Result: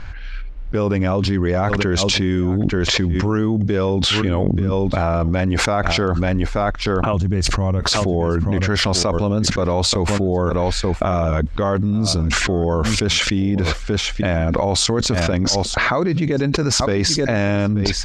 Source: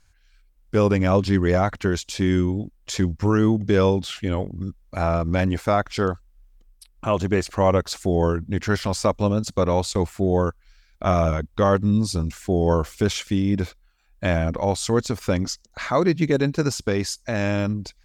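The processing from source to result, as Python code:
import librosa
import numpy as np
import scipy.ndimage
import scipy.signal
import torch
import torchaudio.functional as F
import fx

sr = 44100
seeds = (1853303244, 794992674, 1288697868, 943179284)

p1 = fx.env_lowpass(x, sr, base_hz=2800.0, full_db=-18.0)
p2 = fx.bass_treble(p1, sr, bass_db=15, treble_db=7, at=(7.13, 7.8))
p3 = fx.level_steps(p2, sr, step_db=15, at=(14.82, 15.33))
p4 = fx.air_absorb(p3, sr, metres=78.0)
p5 = p4 + fx.echo_single(p4, sr, ms=883, db=-21.0, dry=0)
p6 = fx.env_flatten(p5, sr, amount_pct=100)
y = p6 * librosa.db_to_amplitude(-10.5)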